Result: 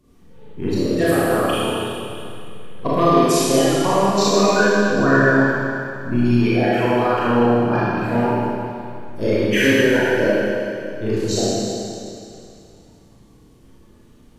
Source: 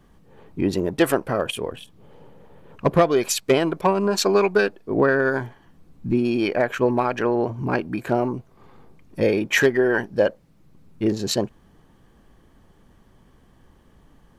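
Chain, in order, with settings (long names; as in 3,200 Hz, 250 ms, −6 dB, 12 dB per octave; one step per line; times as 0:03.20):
spectral magnitudes quantised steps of 30 dB
four-comb reverb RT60 2.5 s, combs from 26 ms, DRR −9.5 dB
level −5 dB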